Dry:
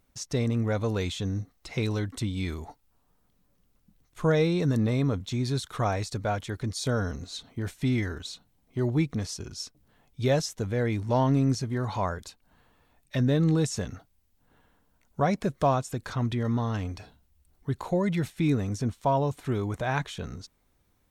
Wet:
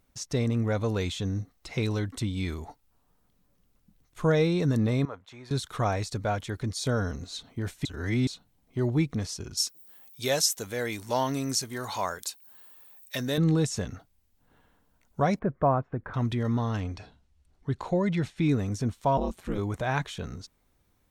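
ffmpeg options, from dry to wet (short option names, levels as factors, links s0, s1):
-filter_complex "[0:a]asettb=1/sr,asplit=3[s0][s1][s2];[s0]atrim=end=5.054[s3];[s1]atrim=start=5.05:end=5.51,asetpts=PTS-STARTPTS,afade=t=in:d=0.004:c=qsin,afade=t=out:st=0.456:d=0.004:c=qsin,acrossover=split=580 2000:gain=0.0794 1 0.158[s4][s5][s6];[s4][s5][s6]amix=inputs=3:normalize=0[s7];[s2]atrim=start=5.506[s8];[s3][s7]acrossfade=d=0.004:c1=hsin:c2=qsin[s9];[s9][s8]acrossfade=d=0.004:c1=qsin:c2=hsin,asettb=1/sr,asplit=3[s10][s11][s12];[s10]atrim=end=9.574[s13];[s11]atrim=start=9.57:end=13.38,asetpts=PTS-STARTPTS,afade=t=in:d=0.004:c=qsin,afade=t=out:st=3.806:d=0.004:c=qsin,aemphasis=mode=production:type=riaa[s14];[s12]atrim=start=13.376[s15];[s13][s14]acrossfade=d=0.004:c1=hsin:c2=qsin[s16];[s16][s15]acrossfade=d=0.004:c1=qsin:c2=hsin,asettb=1/sr,asplit=3[s17][s18][s19];[s17]atrim=end=15.394[s20];[s18]atrim=start=15.39:end=16.14,asetpts=PTS-STARTPTS,afade=t=in:d=0.004:c=qsin,afade=t=out:st=0.746:d=0.004:c=qsin,lowpass=f=1700:w=0.5412,lowpass=f=1700:w=1.3066[s21];[s19]atrim=start=16.136[s22];[s20][s21]acrossfade=d=0.004:c1=hsin:c2=qsin[s23];[s23][s22]acrossfade=d=0.004:c1=qsin:c2=hsin,asettb=1/sr,asplit=3[s24][s25][s26];[s24]atrim=end=16.804[s27];[s25]atrim=start=16.8:end=18.5,asetpts=PTS-STARTPTS,afade=t=in:d=0.004:c=qsin,afade=t=out:st=1.696:d=0.004:c=qsin,lowpass=6600[s28];[s26]atrim=start=18.496[s29];[s27][s28]acrossfade=d=0.004:c1=hsin:c2=qsin[s30];[s30][s29]acrossfade=d=0.004:c1=qsin:c2=hsin,asettb=1/sr,asplit=3[s31][s32][s33];[s31]atrim=end=19.174[s34];[s32]atrim=start=19.17:end=19.58,asetpts=PTS-STARTPTS,afade=t=in:d=0.004:c=qsin,afade=t=out:st=0.406:d=0.004:c=qsin,aeval=exprs='val(0)*sin(2*PI*90*n/s)':c=same[s35];[s33]atrim=start=19.576[s36];[s34][s35]acrossfade=d=0.004:c1=hsin:c2=qsin[s37];[s37][s36]acrossfade=d=0.004:c1=qsin:c2=hsin,asplit=3[s38][s39][s40];[s38]atrim=end=7.852[s41];[s39]atrim=start=7.848:end=8.272,asetpts=PTS-STARTPTS,areverse[s42];[s40]atrim=start=8.268[s43];[s41][s42]acrossfade=d=0.004:c1=hsin:c2=hsin[s44];[s44][s43]acrossfade=d=0.004:c1=hsin:c2=hsin"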